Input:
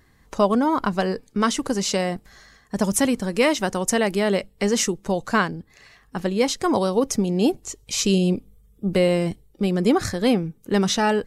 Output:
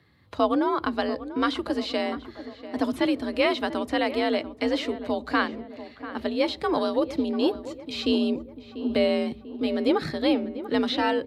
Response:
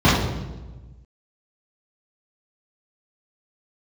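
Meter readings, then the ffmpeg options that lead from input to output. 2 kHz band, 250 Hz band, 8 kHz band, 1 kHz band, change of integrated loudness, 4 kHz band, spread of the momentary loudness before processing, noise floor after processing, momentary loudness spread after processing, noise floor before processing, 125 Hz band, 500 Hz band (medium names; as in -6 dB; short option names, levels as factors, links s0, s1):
-3.0 dB, -3.5 dB, under -20 dB, -3.5 dB, -4.0 dB, -2.5 dB, 8 LU, -48 dBFS, 11 LU, -57 dBFS, -17.5 dB, -3.5 dB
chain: -filter_complex "[0:a]acrossover=split=3500[s0][s1];[s1]acompressor=threshold=0.0251:ratio=4:attack=1:release=60[s2];[s0][s2]amix=inputs=2:normalize=0,asplit=2[s3][s4];[1:a]atrim=start_sample=2205,asetrate=83790,aresample=44100[s5];[s4][s5]afir=irnorm=-1:irlink=0,volume=0.00562[s6];[s3][s6]amix=inputs=2:normalize=0,afreqshift=55,highshelf=f=5100:t=q:w=3:g=-8,asplit=2[s7][s8];[s8]adelay=692,lowpass=f=1800:p=1,volume=0.224,asplit=2[s9][s10];[s10]adelay=692,lowpass=f=1800:p=1,volume=0.54,asplit=2[s11][s12];[s12]adelay=692,lowpass=f=1800:p=1,volume=0.54,asplit=2[s13][s14];[s14]adelay=692,lowpass=f=1800:p=1,volume=0.54,asplit=2[s15][s16];[s16]adelay=692,lowpass=f=1800:p=1,volume=0.54,asplit=2[s17][s18];[s18]adelay=692,lowpass=f=1800:p=1,volume=0.54[s19];[s7][s9][s11][s13][s15][s17][s19]amix=inputs=7:normalize=0,volume=0.596"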